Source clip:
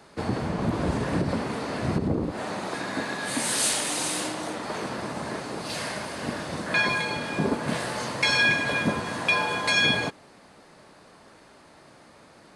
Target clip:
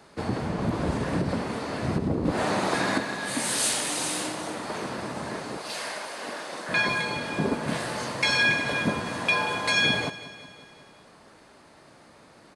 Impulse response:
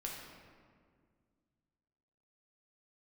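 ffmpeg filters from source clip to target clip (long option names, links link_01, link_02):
-filter_complex "[0:a]asettb=1/sr,asplit=3[link_01][link_02][link_03];[link_01]atrim=end=2.254[link_04];[link_02]atrim=start=2.25:end=2.98,asetpts=PTS-STARTPTS,afade=type=in:duration=0.004:curve=qsin,afade=type=out:start_time=0.726:duration=0.004:curve=qsin,acontrast=86[link_05];[link_03]atrim=start=2.976[link_06];[link_04][link_05]acrossfade=duration=0.004:curve1=hsin:curve2=qsin[link_07];[link_07][link_06]acrossfade=duration=0.004:curve1=qsin:curve2=hsin,asettb=1/sr,asplit=3[link_08][link_09][link_10];[link_08]atrim=end=5.574[link_11];[link_09]atrim=start=5.57:end=6.69,asetpts=PTS-STARTPTS,afade=type=in:duration=0.004:curve=qsin,afade=type=out:start_time=1.116:duration=0.004:curve=qsin,highpass=430[link_12];[link_10]atrim=start=6.686[link_13];[link_11][link_12]acrossfade=duration=0.004:curve1=hsin:curve2=qsin[link_14];[link_14][link_13]acrossfade=duration=0.004:curve1=qsin:curve2=hsin,aecho=1:1:183|366|549|732|915|1098:0.15|0.0898|0.0539|0.0323|0.0194|0.0116,volume=-1dB"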